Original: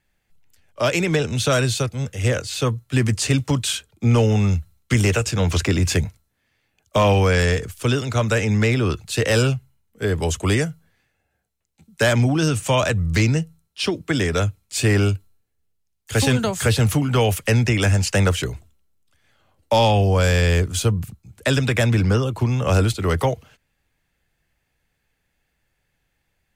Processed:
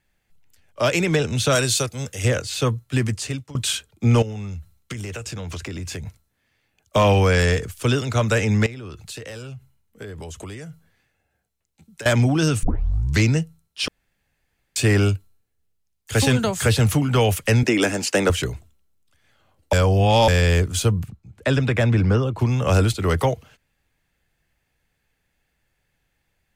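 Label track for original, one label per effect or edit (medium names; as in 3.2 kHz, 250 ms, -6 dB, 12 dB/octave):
1.550000	2.250000	tone controls bass -5 dB, treble +7 dB
2.810000	3.550000	fade out, to -24 dB
4.220000	6.070000	compression 8:1, threshold -28 dBFS
8.660000	12.060000	compression 20:1, threshold -31 dBFS
12.630000	12.630000	tape start 0.56 s
13.880000	14.760000	room tone
17.630000	18.300000	resonant high-pass 290 Hz, resonance Q 2
19.730000	20.280000	reverse
21.030000	22.390000	low-pass 2.2 kHz 6 dB/octave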